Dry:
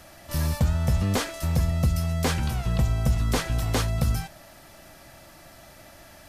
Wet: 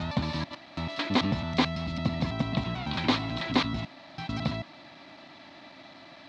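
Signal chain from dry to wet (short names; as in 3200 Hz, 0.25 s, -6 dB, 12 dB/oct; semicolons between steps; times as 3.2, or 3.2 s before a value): slices in reverse order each 0.11 s, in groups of 7; speaker cabinet 180–4300 Hz, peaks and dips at 270 Hz +9 dB, 470 Hz -8 dB, 1000 Hz +5 dB, 1500 Hz -4 dB, 2200 Hz +4 dB, 3900 Hz +9 dB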